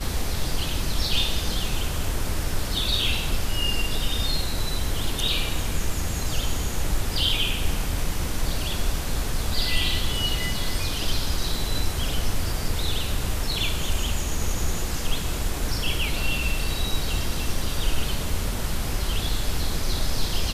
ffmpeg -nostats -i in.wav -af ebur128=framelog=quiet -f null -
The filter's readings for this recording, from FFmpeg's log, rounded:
Integrated loudness:
  I:         -26.8 LUFS
  Threshold: -36.8 LUFS
Loudness range:
  LRA:         1.8 LU
  Threshold: -46.8 LUFS
  LRA low:   -27.6 LUFS
  LRA high:  -25.8 LUFS